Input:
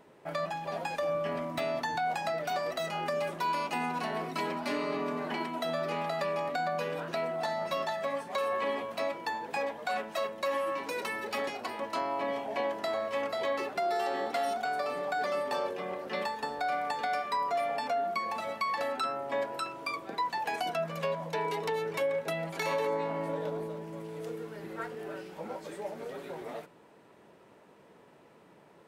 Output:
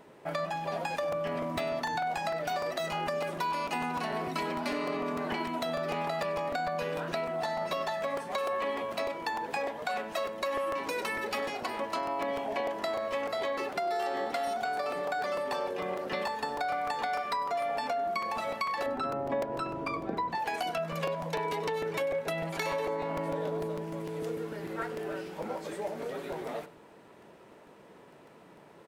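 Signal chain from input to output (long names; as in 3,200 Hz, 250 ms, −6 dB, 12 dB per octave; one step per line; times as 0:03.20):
0:18.86–0:20.35: spectral tilt −4 dB per octave
downward compressor 4 to 1, threshold −33 dBFS, peak gain reduction 7.5 dB
on a send: single-tap delay 98 ms −18.5 dB
on the sum: regular buffer underruns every 0.15 s, samples 128, repeat, from 0:00.97
level +3.5 dB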